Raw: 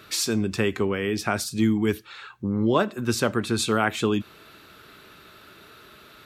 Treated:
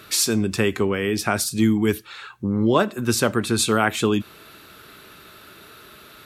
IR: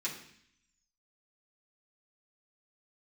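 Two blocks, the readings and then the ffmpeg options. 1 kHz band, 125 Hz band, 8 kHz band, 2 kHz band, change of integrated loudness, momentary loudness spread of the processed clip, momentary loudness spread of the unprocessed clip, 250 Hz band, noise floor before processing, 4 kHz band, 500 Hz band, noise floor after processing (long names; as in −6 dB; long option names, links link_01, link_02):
+3.0 dB, +3.0 dB, +6.5 dB, +3.0 dB, +3.5 dB, 7 LU, 7 LU, +3.0 dB, −50 dBFS, +4.0 dB, +3.0 dB, −47 dBFS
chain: -af "equalizer=frequency=11000:width=0.87:gain=6.5,volume=3dB"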